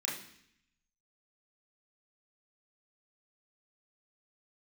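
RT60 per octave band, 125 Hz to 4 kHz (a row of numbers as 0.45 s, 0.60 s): 1.0 s, 0.90 s, 0.65 s, 0.65 s, 0.85 s, 0.80 s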